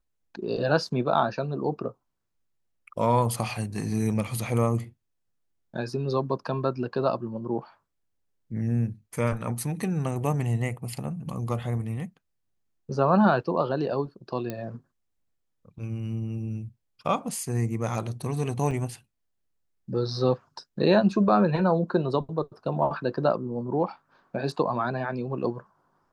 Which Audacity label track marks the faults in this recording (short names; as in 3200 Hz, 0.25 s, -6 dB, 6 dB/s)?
14.500000	14.500000	pop -18 dBFS
18.710000	18.720000	gap 5.5 ms